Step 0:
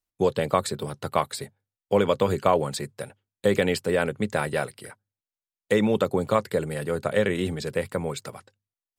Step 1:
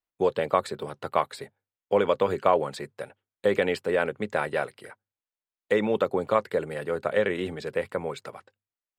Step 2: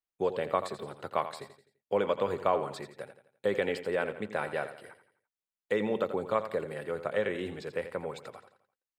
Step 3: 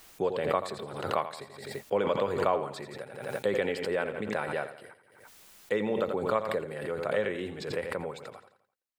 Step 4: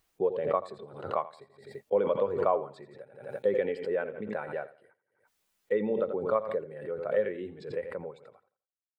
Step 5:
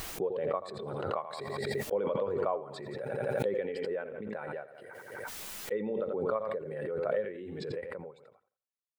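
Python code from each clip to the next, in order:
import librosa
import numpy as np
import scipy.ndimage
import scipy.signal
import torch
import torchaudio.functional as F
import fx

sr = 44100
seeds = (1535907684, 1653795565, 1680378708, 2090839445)

y1 = fx.bass_treble(x, sr, bass_db=-10, treble_db=-12)
y2 = fx.echo_feedback(y1, sr, ms=85, feedback_pct=43, wet_db=-11.5)
y2 = y2 * 10.0 ** (-6.0 / 20.0)
y3 = fx.pre_swell(y2, sr, db_per_s=57.0)
y4 = fx.spectral_expand(y3, sr, expansion=1.5)
y5 = fx.pre_swell(y4, sr, db_per_s=22.0)
y5 = y5 * 10.0 ** (-6.0 / 20.0)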